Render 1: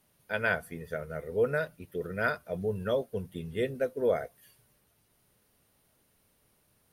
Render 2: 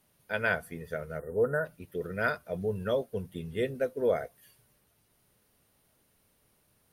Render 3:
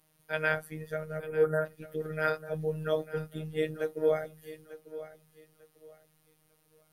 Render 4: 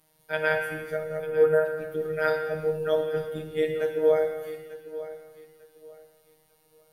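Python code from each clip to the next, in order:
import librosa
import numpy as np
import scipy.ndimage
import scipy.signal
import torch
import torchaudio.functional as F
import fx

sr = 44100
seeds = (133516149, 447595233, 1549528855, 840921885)

y1 = fx.spec_erase(x, sr, start_s=1.19, length_s=0.46, low_hz=1900.0, high_hz=6900.0)
y2 = fx.robotise(y1, sr, hz=156.0)
y2 = fx.echo_feedback(y2, sr, ms=896, feedback_pct=25, wet_db=-15)
y2 = F.gain(torch.from_numpy(y2), 2.0).numpy()
y3 = fx.rev_gated(y2, sr, seeds[0], gate_ms=480, shape='falling', drr_db=4.0)
y3 = F.gain(torch.from_numpy(y3), 2.5).numpy()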